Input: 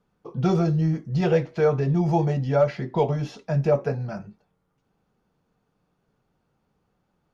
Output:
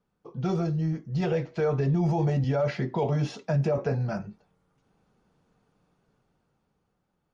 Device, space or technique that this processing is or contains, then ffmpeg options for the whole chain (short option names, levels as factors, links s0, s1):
low-bitrate web radio: -filter_complex "[0:a]asettb=1/sr,asplit=3[s0][s1][s2];[s0]atrim=end=2.444[s3];[s1]atrim=start=2.44:end=3.78,asetpts=PTS-STARTPTS,afade=t=in:d=0.004:c=qsin,afade=t=out:st=1.336:d=0.004:c=qsin,highpass=f=89:w=0.5412,highpass=f=89:w=1.3066[s4];[s2]atrim=start=3.776[s5];[s3][s4]acrossfade=d=0.004:c1=hsin:c2=qsin[s6];[s6][s5]acrossfade=d=0.004:c1=qsin:c2=hsin,dynaudnorm=f=270:g=13:m=4.47,alimiter=limit=0.251:level=0:latency=1:release=29,volume=0.531" -ar 44100 -c:a libmp3lame -b:a 48k